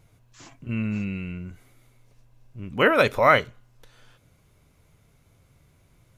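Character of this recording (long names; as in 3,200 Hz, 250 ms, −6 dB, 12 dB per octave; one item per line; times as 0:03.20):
background noise floor −61 dBFS
spectral slope −3.5 dB per octave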